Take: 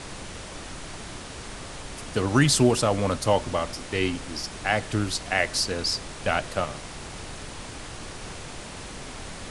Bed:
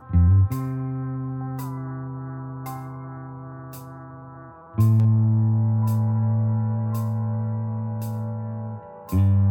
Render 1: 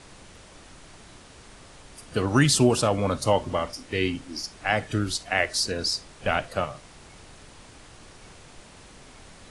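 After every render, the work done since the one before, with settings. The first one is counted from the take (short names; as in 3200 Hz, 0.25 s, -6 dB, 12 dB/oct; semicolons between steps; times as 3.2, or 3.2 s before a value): noise print and reduce 10 dB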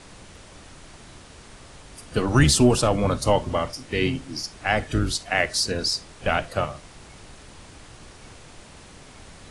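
octaver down 1 oct, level -3 dB; in parallel at -11 dB: soft clip -16 dBFS, distortion -13 dB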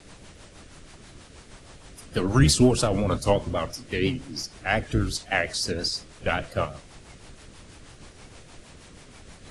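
rotary speaker horn 6.3 Hz; vibrato 5.7 Hz 77 cents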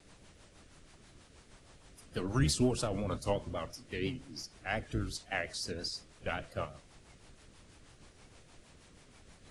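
gain -11 dB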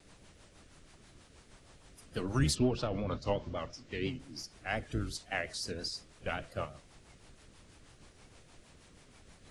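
2.54–4.18 LPF 4300 Hz -> 8100 Hz 24 dB/oct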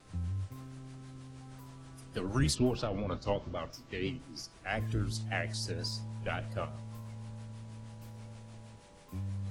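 add bed -20 dB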